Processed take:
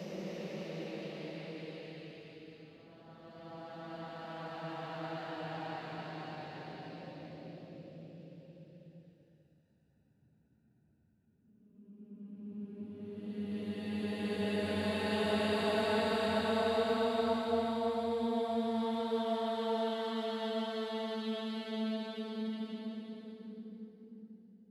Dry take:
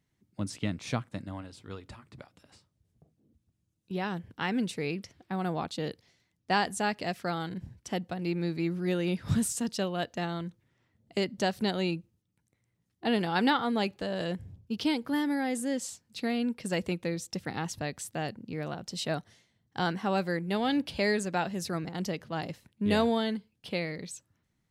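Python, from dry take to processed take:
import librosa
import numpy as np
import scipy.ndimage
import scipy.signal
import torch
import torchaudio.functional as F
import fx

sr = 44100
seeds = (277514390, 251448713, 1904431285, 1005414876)

p1 = fx.wiener(x, sr, points=41)
p2 = fx.low_shelf(p1, sr, hz=260.0, db=-8.5)
p3 = fx.paulstretch(p2, sr, seeds[0], factor=18.0, window_s=0.25, from_s=22.08)
p4 = p3 + fx.echo_alternate(p3, sr, ms=118, hz=1100.0, feedback_pct=51, wet_db=-5.0, dry=0)
y = F.gain(torch.from_numpy(p4), -5.5).numpy()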